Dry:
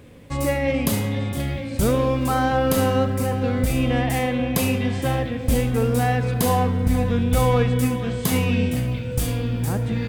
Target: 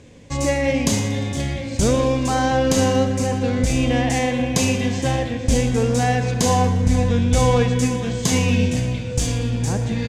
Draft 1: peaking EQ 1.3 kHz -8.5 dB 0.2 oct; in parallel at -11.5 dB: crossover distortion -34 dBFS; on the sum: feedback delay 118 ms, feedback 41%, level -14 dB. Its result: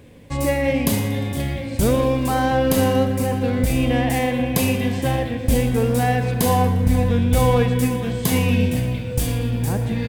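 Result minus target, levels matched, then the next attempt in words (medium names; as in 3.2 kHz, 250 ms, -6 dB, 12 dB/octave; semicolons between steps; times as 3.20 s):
8 kHz band -4.5 dB
resonant low-pass 6.6 kHz, resonance Q 3.4; peaking EQ 1.3 kHz -8.5 dB 0.2 oct; in parallel at -11.5 dB: crossover distortion -34 dBFS; on the sum: feedback delay 118 ms, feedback 41%, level -14 dB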